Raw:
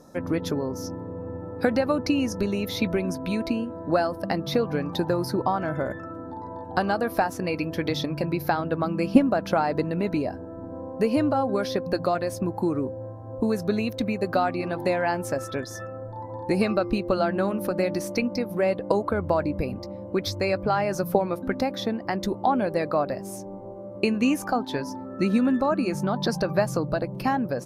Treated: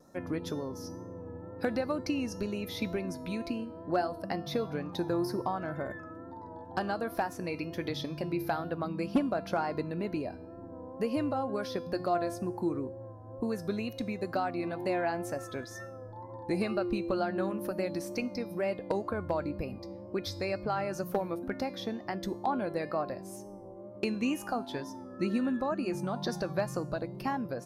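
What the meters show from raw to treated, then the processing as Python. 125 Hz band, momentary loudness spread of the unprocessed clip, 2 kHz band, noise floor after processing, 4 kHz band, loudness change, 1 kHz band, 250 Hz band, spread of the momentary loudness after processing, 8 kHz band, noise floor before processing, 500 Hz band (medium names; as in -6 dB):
-8.5 dB, 11 LU, -8.0 dB, -46 dBFS, -8.0 dB, -8.0 dB, -8.0 dB, -8.0 dB, 12 LU, -8.0 dB, -38 dBFS, -8.0 dB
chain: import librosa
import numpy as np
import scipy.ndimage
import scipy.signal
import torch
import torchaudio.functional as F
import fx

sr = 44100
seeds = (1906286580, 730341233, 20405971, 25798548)

y = fx.clip_asym(x, sr, top_db=-12.5, bottom_db=-9.5)
y = fx.comb_fb(y, sr, f0_hz=350.0, decay_s=0.62, harmonics='all', damping=0.0, mix_pct=70)
y = fx.vibrato(y, sr, rate_hz=2.1, depth_cents=48.0)
y = y * 10.0 ** (1.5 / 20.0)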